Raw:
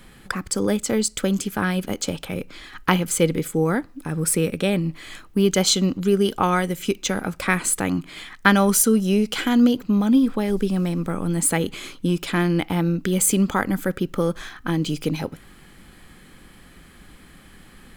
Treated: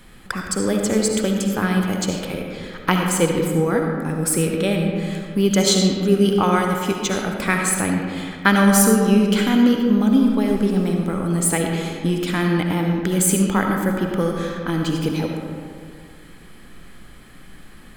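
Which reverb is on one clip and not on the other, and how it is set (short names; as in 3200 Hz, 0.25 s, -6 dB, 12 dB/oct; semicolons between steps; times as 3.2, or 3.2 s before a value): digital reverb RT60 2.1 s, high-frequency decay 0.45×, pre-delay 30 ms, DRR 1.5 dB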